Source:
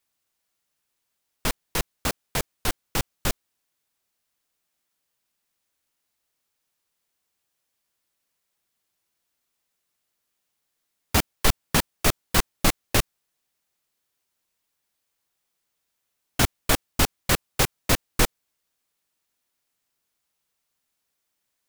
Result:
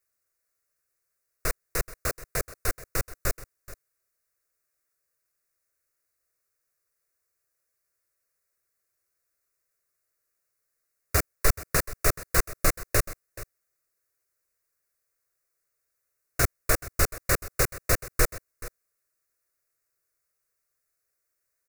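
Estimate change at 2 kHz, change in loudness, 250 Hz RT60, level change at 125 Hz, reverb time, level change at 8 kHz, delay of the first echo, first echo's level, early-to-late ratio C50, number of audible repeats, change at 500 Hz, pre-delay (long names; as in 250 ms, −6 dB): −2.0 dB, −2.5 dB, no reverb audible, −2.5 dB, no reverb audible, −1.5 dB, 429 ms, −17.0 dB, no reverb audible, 1, −1.0 dB, no reverb audible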